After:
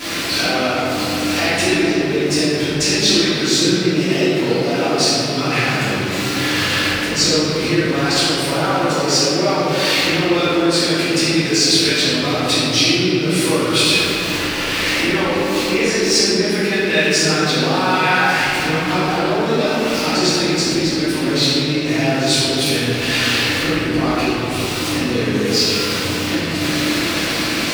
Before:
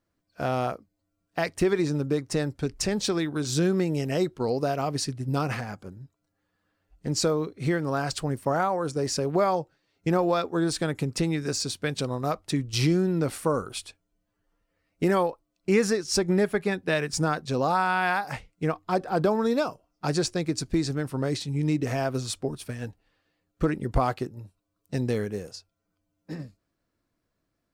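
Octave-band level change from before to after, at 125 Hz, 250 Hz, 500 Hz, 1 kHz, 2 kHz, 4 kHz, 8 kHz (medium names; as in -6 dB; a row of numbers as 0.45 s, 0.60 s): +6.5 dB, +10.5 dB, +8.5 dB, +8.5 dB, +16.0 dB, +20.5 dB, +14.5 dB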